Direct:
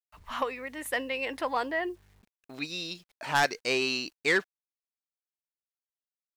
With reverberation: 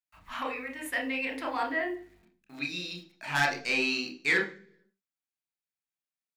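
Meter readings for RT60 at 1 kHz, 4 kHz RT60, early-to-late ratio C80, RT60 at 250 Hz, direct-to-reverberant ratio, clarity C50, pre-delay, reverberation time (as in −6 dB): 0.40 s, 0.50 s, 15.5 dB, 0.80 s, 0.5 dB, 11.5 dB, 26 ms, 0.50 s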